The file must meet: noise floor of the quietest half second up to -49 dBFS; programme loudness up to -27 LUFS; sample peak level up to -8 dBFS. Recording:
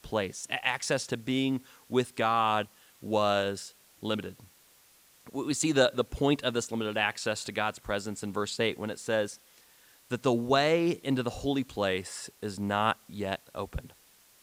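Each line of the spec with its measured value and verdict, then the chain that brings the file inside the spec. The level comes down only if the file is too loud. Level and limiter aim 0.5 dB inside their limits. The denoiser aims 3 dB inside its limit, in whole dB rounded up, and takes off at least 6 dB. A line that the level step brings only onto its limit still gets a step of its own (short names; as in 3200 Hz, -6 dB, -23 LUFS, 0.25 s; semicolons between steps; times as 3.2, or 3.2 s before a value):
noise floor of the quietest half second -61 dBFS: OK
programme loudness -30.0 LUFS: OK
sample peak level -10.5 dBFS: OK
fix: none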